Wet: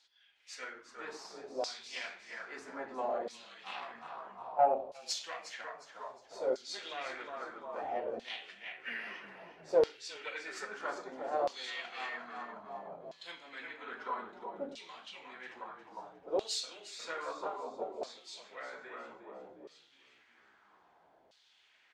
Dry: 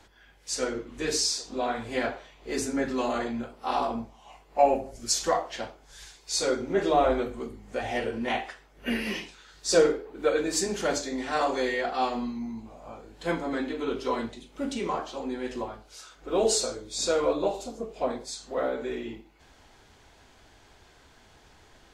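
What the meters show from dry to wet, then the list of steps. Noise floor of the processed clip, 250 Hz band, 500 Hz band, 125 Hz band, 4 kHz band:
-67 dBFS, -19.5 dB, -10.0 dB, under -20 dB, -9.5 dB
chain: frequency-shifting echo 358 ms, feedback 57%, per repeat -36 Hz, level -7 dB; valve stage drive 14 dB, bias 0.55; LFO band-pass saw down 0.61 Hz 540–4500 Hz

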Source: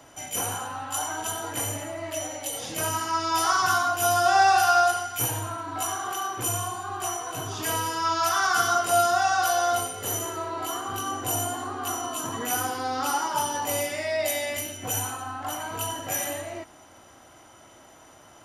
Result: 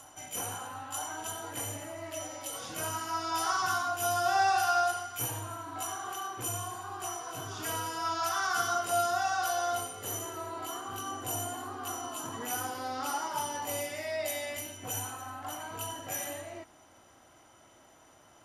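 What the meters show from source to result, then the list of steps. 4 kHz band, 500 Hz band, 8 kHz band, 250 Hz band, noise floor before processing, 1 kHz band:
-7.5 dB, -7.5 dB, -7.5 dB, -7.5 dB, -52 dBFS, -7.5 dB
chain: reverse echo 943 ms -18 dB; trim -7.5 dB

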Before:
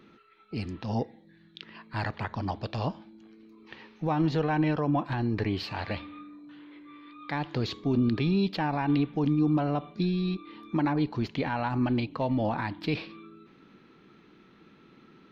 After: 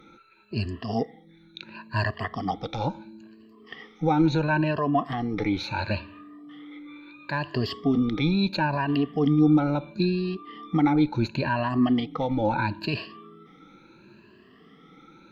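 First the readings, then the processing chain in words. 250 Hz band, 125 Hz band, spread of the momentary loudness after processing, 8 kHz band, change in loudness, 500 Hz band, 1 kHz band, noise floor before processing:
+4.0 dB, +2.0 dB, 21 LU, no reading, +3.5 dB, +3.5 dB, +4.0 dB, -58 dBFS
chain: drifting ripple filter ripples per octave 1.4, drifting +0.73 Hz, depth 20 dB

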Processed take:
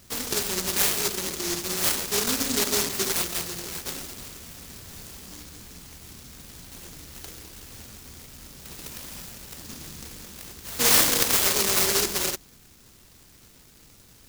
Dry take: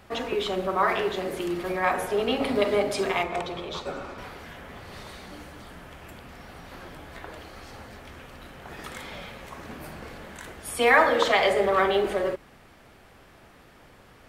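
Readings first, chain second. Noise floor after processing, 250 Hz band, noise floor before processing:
-54 dBFS, -2.5 dB, -53 dBFS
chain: band-stop 620 Hz, Q 12; delay time shaken by noise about 5.5 kHz, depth 0.49 ms

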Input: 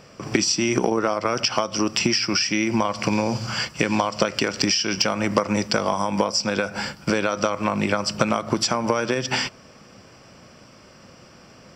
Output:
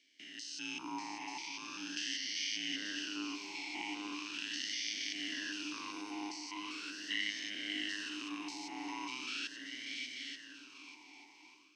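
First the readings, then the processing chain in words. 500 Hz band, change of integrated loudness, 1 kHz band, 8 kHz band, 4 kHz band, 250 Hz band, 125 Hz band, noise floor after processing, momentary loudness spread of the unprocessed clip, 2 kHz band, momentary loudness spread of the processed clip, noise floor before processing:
-33.5 dB, -17.5 dB, -21.5 dB, -17.0 dB, -12.5 dB, -20.5 dB, under -35 dB, -60 dBFS, 5 LU, -13.5 dB, 12 LU, -49 dBFS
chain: spectrogram pixelated in time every 200 ms; on a send: multi-head delay 295 ms, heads second and third, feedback 47%, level -12 dB; on the sum: ring modulator 510 Hz; differentiator; compression 2:1, threshold -42 dBFS, peak gain reduction 8.5 dB; peaking EQ 1.2 kHz -12.5 dB 0.64 oct; level rider gain up to 12 dB; talking filter i-u 0.4 Hz; trim +10 dB

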